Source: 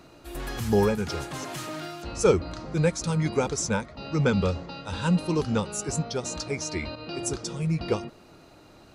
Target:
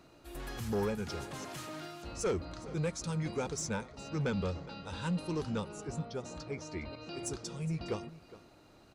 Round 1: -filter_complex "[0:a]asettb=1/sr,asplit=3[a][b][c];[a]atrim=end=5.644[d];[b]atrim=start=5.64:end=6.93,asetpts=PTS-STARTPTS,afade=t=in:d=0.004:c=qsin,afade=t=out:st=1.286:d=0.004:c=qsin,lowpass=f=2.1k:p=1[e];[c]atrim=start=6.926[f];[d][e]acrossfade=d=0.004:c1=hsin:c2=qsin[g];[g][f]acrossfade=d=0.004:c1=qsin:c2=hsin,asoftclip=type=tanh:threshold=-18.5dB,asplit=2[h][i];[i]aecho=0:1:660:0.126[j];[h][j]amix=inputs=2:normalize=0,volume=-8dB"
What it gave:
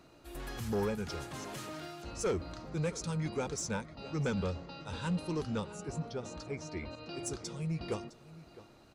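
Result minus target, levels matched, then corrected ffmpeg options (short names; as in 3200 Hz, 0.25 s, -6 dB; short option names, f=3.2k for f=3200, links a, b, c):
echo 0.247 s late
-filter_complex "[0:a]asettb=1/sr,asplit=3[a][b][c];[a]atrim=end=5.644[d];[b]atrim=start=5.64:end=6.93,asetpts=PTS-STARTPTS,afade=t=in:d=0.004:c=qsin,afade=t=out:st=1.286:d=0.004:c=qsin,lowpass=f=2.1k:p=1[e];[c]atrim=start=6.926[f];[d][e]acrossfade=d=0.004:c1=hsin:c2=qsin[g];[g][f]acrossfade=d=0.004:c1=qsin:c2=hsin,asoftclip=type=tanh:threshold=-18.5dB,asplit=2[h][i];[i]aecho=0:1:413:0.126[j];[h][j]amix=inputs=2:normalize=0,volume=-8dB"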